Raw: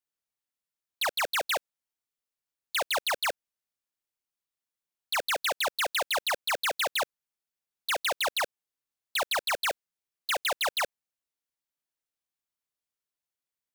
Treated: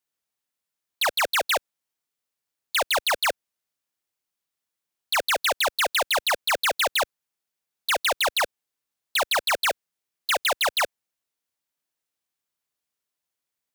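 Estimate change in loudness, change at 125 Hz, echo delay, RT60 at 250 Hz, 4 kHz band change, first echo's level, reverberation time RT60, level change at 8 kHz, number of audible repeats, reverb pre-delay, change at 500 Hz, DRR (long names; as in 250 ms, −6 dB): +5.5 dB, can't be measured, no echo audible, no reverb audible, +5.5 dB, no echo audible, no reverb audible, +5.5 dB, no echo audible, no reverb audible, +5.5 dB, no reverb audible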